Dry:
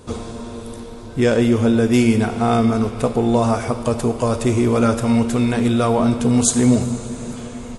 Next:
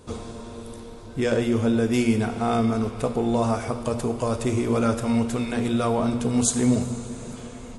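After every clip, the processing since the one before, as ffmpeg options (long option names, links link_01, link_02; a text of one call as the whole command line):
ffmpeg -i in.wav -af "bandreject=frequency=119.9:width_type=h:width=4,bandreject=frequency=239.8:width_type=h:width=4,bandreject=frequency=359.7:width_type=h:width=4,bandreject=frequency=479.6:width_type=h:width=4,bandreject=frequency=599.5:width_type=h:width=4,bandreject=frequency=719.4:width_type=h:width=4,bandreject=frequency=839.3:width_type=h:width=4,bandreject=frequency=959.2:width_type=h:width=4,bandreject=frequency=1079.1:width_type=h:width=4,bandreject=frequency=1199:width_type=h:width=4,bandreject=frequency=1318.9:width_type=h:width=4,bandreject=frequency=1438.8:width_type=h:width=4,bandreject=frequency=1558.7:width_type=h:width=4,bandreject=frequency=1678.6:width_type=h:width=4,bandreject=frequency=1798.5:width_type=h:width=4,bandreject=frequency=1918.4:width_type=h:width=4,volume=-5.5dB" out.wav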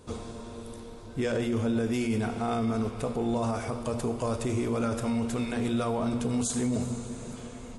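ffmpeg -i in.wav -af "alimiter=limit=-17.5dB:level=0:latency=1:release=12,volume=-3.5dB" out.wav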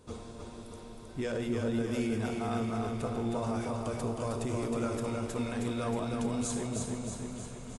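ffmpeg -i in.wav -af "aecho=1:1:315|630|945|1260|1575|1890|2205|2520:0.631|0.36|0.205|0.117|0.0666|0.038|0.0216|0.0123,volume=-5.5dB" out.wav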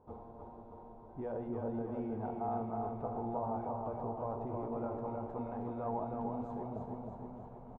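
ffmpeg -i in.wav -af "lowpass=frequency=840:width_type=q:width=4.9,volume=-8.5dB" out.wav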